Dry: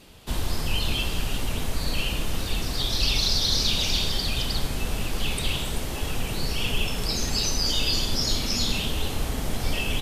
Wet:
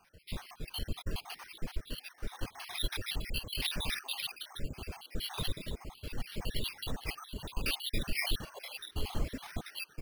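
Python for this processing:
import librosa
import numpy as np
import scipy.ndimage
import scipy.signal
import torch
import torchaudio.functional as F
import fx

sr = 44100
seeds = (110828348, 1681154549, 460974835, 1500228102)

y = fx.spec_dropout(x, sr, seeds[0], share_pct=73)
y = fx.lowpass(y, sr, hz=7100.0, slope=12, at=(6.12, 6.65))
y = np.repeat(y[::6], 6)[:len(y)]
y = fx.dereverb_blind(y, sr, rt60_s=1.3)
y = y * (1.0 - 0.46 / 2.0 + 0.46 / 2.0 * np.cos(2.0 * np.pi * 0.75 * (np.arange(len(y)) / sr)))
y = y * 10.0 ** (-3.5 / 20.0)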